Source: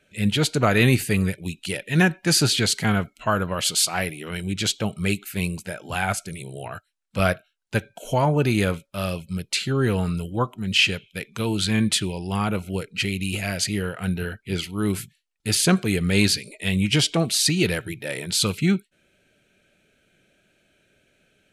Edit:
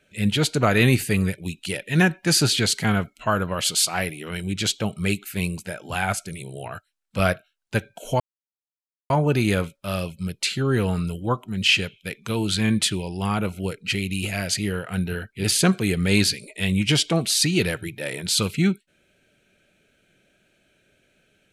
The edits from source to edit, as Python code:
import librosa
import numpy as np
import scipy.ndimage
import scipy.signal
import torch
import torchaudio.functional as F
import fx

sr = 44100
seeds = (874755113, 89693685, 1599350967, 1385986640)

y = fx.edit(x, sr, fx.insert_silence(at_s=8.2, length_s=0.9),
    fx.cut(start_s=14.54, length_s=0.94), tone=tone)